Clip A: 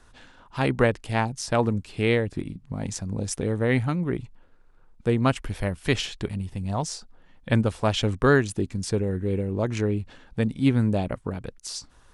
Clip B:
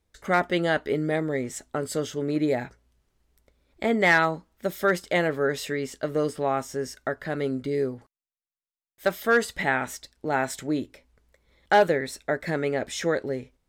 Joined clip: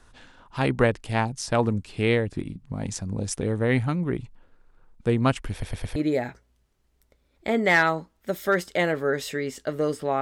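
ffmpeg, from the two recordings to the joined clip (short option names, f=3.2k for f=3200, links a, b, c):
-filter_complex "[0:a]apad=whole_dur=10.21,atrim=end=10.21,asplit=4[a][b][c][d];[a]atrim=end=5.632[e];[b]atrim=start=5.518:end=5.632[f];[c]atrim=start=5.518:end=5.632[g];[d]atrim=start=5.518:end=5.632[h];[1:a]atrim=start=2.318:end=6.57[i];[e][f]acrossfade=d=0.004:c1=hsin:c2=hsin[j];[j][g]acrossfade=d=0.004:c1=hsin:c2=hsin[k];[k][h]acrossfade=d=0.004:c1=hsin:c2=hsin[l];[l][i]acrossfade=d=0.004:c1=hsin:c2=hsin"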